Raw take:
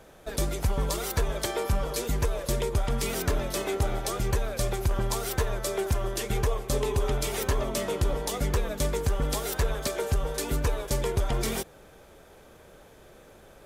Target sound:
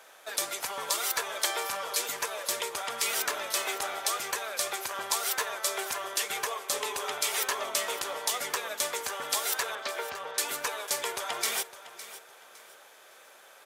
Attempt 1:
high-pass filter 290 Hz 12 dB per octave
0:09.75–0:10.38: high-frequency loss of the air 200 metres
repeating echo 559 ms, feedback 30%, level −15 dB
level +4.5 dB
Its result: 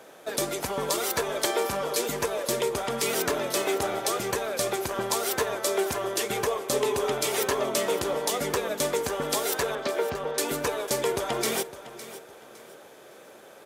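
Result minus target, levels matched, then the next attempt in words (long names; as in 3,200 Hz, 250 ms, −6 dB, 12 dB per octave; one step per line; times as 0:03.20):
250 Hz band +14.0 dB
high-pass filter 970 Hz 12 dB per octave
0:09.75–0:10.38: high-frequency loss of the air 200 metres
repeating echo 559 ms, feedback 30%, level −15 dB
level +4.5 dB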